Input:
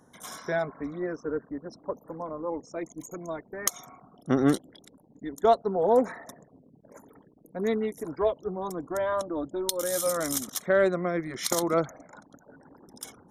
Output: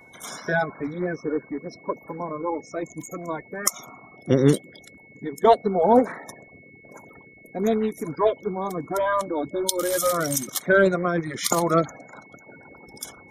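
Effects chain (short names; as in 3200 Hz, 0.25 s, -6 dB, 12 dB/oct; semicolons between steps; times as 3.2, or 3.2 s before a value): bin magnitudes rounded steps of 30 dB; whine 2200 Hz -55 dBFS; gain +5.5 dB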